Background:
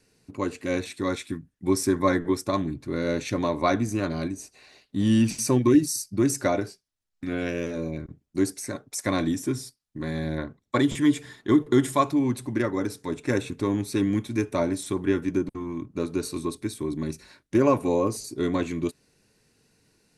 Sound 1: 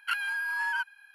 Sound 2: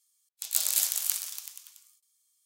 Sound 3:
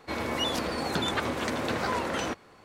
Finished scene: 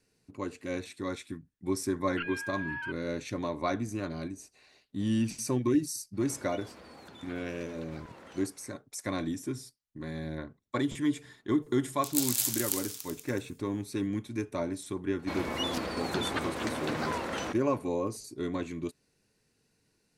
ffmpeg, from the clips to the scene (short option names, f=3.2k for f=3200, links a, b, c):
-filter_complex "[3:a]asplit=2[a][b];[0:a]volume=-8dB[c];[1:a]lowpass=f=2.5k:t=q:w=2.5[d];[a]acompressor=threshold=-40dB:ratio=6:attack=3.2:release=140:knee=1:detection=peak[e];[d]atrim=end=1.14,asetpts=PTS-STARTPTS,volume=-11.5dB,afade=t=in:d=0.004:c=hsin,afade=t=out:st=1.136:d=0.004:c=hsin,adelay=2090[f];[e]atrim=end=2.64,asetpts=PTS-STARTPTS,volume=-8dB,afade=t=in:d=0.05,afade=t=out:st=2.59:d=0.05,adelay=6130[g];[2:a]atrim=end=2.45,asetpts=PTS-STARTPTS,volume=-3dB,afade=t=in:d=0.004:c=hsin,afade=t=out:st=2.446:d=0.004:c=hsin,adelay=512442S[h];[b]atrim=end=2.64,asetpts=PTS-STARTPTS,volume=-4dB,afade=t=in:d=0.004:c=hsin,afade=t=out:st=2.636:d=0.004:c=hsin,adelay=15190[i];[c][f][g][h][i]amix=inputs=5:normalize=0"